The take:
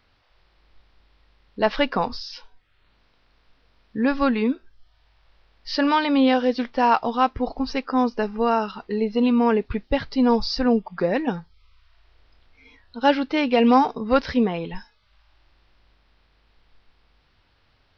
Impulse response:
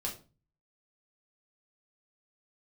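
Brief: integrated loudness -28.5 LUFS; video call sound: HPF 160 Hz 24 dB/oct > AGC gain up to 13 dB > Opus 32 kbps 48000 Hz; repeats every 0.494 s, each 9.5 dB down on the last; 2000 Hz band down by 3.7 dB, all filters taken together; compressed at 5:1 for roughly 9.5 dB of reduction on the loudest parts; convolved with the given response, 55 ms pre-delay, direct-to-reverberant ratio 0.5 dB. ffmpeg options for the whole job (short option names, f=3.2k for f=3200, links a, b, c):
-filter_complex "[0:a]equalizer=f=2k:t=o:g=-5,acompressor=threshold=-24dB:ratio=5,aecho=1:1:494|988|1482|1976:0.335|0.111|0.0365|0.012,asplit=2[a][b];[1:a]atrim=start_sample=2205,adelay=55[c];[b][c]afir=irnorm=-1:irlink=0,volume=-2dB[d];[a][d]amix=inputs=2:normalize=0,highpass=f=160:w=0.5412,highpass=f=160:w=1.3066,dynaudnorm=m=13dB,volume=-7.5dB" -ar 48000 -c:a libopus -b:a 32k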